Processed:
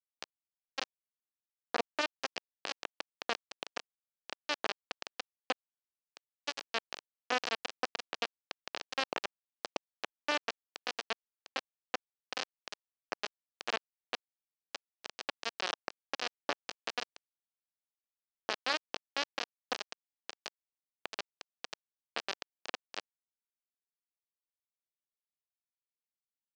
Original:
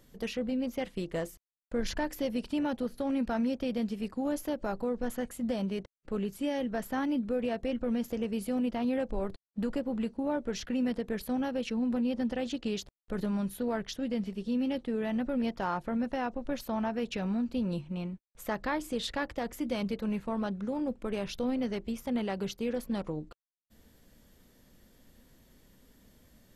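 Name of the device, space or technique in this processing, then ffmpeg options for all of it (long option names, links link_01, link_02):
hand-held game console: -af "acrusher=bits=3:mix=0:aa=0.000001,highpass=450,equalizer=frequency=960:width_type=q:width=4:gain=-5,equalizer=frequency=1400:width_type=q:width=4:gain=-4,equalizer=frequency=2100:width_type=q:width=4:gain=-6,equalizer=frequency=3600:width_type=q:width=4:gain=-5,lowpass=frequency=5000:width=0.5412,lowpass=frequency=5000:width=1.3066,volume=4dB"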